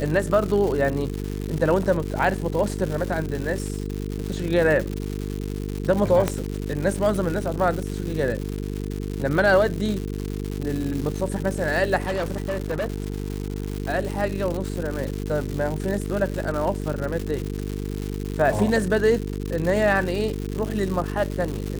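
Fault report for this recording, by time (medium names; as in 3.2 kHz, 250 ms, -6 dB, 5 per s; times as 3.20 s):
buzz 50 Hz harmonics 9 -29 dBFS
crackle 240 per s -27 dBFS
6.28 s: pop -8 dBFS
12.04–13.78 s: clipped -21.5 dBFS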